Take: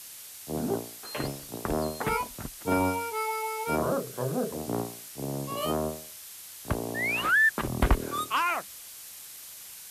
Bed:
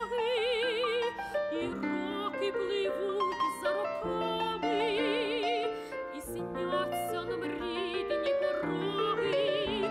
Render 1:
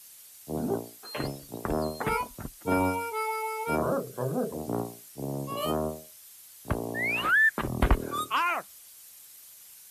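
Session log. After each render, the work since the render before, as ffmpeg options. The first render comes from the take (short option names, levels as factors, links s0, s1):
-af "afftdn=nr=9:nf=-45"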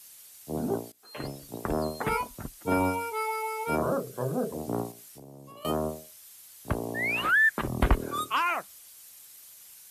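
-filter_complex "[0:a]asettb=1/sr,asplit=3[s0][s1][s2];[s0]atrim=end=4.914[s3];[s1]atrim=start=4.91:end=5.65,asetpts=PTS-STARTPTS,afade=t=in:d=0.004:c=qsin,afade=t=out:st=0.736:d=0.004:c=qsin,acompressor=threshold=0.00631:ratio=10:attack=3.2:release=140:knee=1:detection=peak[s4];[s2]atrim=start=5.646[s5];[s3][s4]acrossfade=d=0.004:c1=hsin:c2=qsin[s6];[s6][s5]acrossfade=d=0.004:c1=qsin:c2=hsin,asplit=2[s7][s8];[s7]atrim=end=0.92,asetpts=PTS-STARTPTS,afade=t=out:st=0.916:d=0.004:c=hsin:silence=0.105925[s9];[s8]atrim=start=0.92,asetpts=PTS-STARTPTS,afade=t=in:d=0.53:silence=0.105925[s10];[s9][s10]concat=n=2:v=0:a=1"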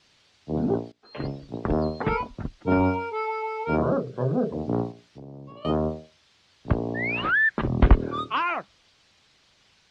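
-af "lowpass=f=4500:w=0.5412,lowpass=f=4500:w=1.3066,lowshelf=f=480:g=8"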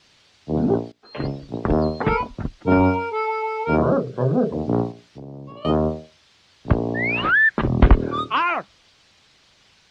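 -af "volume=1.78,alimiter=limit=0.794:level=0:latency=1"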